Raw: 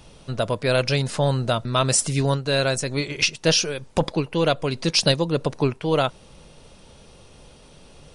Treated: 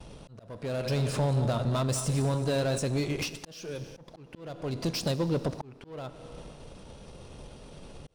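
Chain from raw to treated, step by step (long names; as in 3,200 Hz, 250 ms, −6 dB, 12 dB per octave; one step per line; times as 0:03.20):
0:00.67–0:02.79: feedback delay that plays each chunk backwards 111 ms, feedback 52%, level −11 dB
downward compressor 3 to 1, threshold −23 dBFS, peak gain reduction 7.5 dB
soft clipping −25 dBFS, distortion −11 dB
four-comb reverb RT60 2.1 s, combs from 27 ms, DRR 13.5 dB
harmonic generator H 7 −38 dB, 8 −25 dB, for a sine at −22 dBFS
volume swells 576 ms
tilt shelving filter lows +3.5 dB, about 1,200 Hz
noise gate with hold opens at −44 dBFS
dynamic equaliser 2,000 Hz, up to −3 dB, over −47 dBFS, Q 1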